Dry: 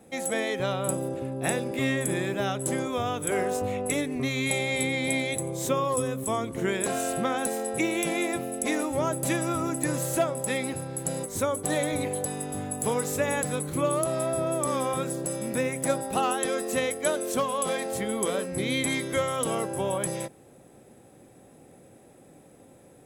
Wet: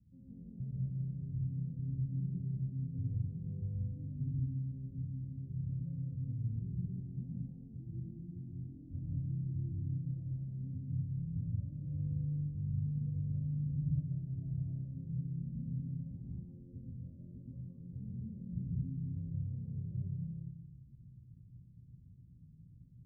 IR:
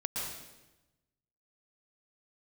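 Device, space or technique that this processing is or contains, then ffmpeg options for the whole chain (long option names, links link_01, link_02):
club heard from the street: -filter_complex "[0:a]alimiter=limit=-20.5dB:level=0:latency=1:release=139,lowpass=frequency=130:width=0.5412,lowpass=frequency=130:width=1.3066[link_01];[1:a]atrim=start_sample=2205[link_02];[link_01][link_02]afir=irnorm=-1:irlink=0,volume=2.5dB"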